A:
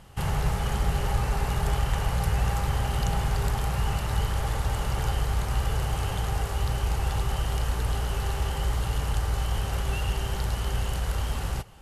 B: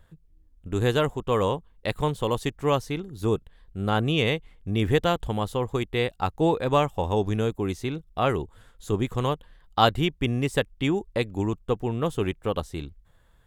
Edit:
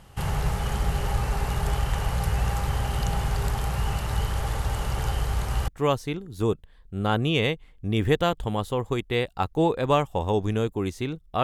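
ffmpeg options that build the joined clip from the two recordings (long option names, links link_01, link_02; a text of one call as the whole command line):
ffmpeg -i cue0.wav -i cue1.wav -filter_complex "[0:a]apad=whole_dur=11.43,atrim=end=11.43,atrim=end=5.682[link_01];[1:a]atrim=start=2.508:end=8.26[link_02];[link_01][link_02]acrossfade=duration=0.004:curve1=hsin:curve2=hsin" out.wav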